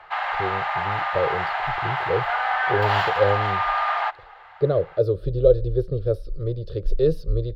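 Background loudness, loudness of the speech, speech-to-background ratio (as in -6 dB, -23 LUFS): -24.0 LUFS, -25.0 LUFS, -1.0 dB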